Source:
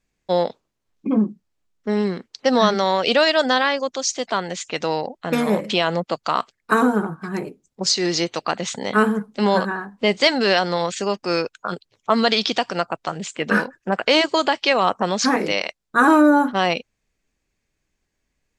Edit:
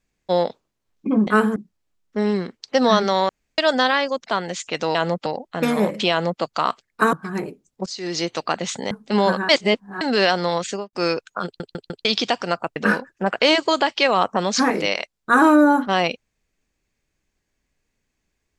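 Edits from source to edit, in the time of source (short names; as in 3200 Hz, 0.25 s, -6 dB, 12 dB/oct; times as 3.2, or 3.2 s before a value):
3–3.29 room tone
3.95–4.25 cut
5.81–6.12 copy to 4.96
6.83–7.12 cut
7.85–8.34 fade in, from -20.5 dB
8.9–9.19 move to 1.27
9.77–10.29 reverse
10.95–11.21 studio fade out
11.73 stutter in place 0.15 s, 4 plays
13.04–13.42 cut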